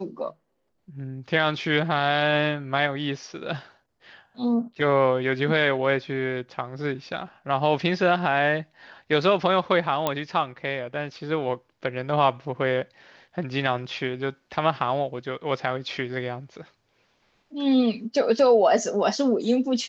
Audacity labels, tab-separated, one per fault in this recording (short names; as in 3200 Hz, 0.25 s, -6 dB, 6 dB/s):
10.070000	10.070000	pop -9 dBFS